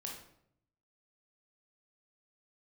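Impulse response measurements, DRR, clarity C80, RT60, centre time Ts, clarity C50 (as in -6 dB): -1.5 dB, 8.0 dB, 0.70 s, 37 ms, 4.0 dB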